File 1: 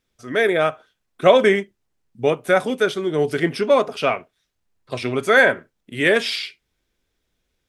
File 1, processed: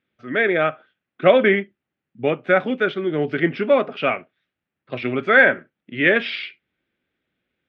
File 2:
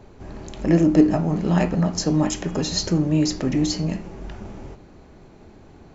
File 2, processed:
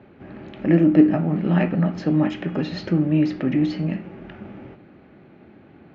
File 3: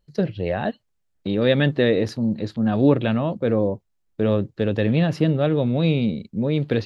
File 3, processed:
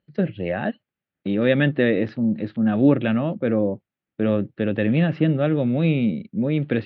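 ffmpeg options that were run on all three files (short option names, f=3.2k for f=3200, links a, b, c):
-af "highpass=150,equalizer=f=440:t=q:w=4:g=-6,equalizer=f=690:t=q:w=4:g=-4,equalizer=f=990:t=q:w=4:g=-9,lowpass=f=2.9k:w=0.5412,lowpass=f=2.9k:w=1.3066,volume=2.5dB"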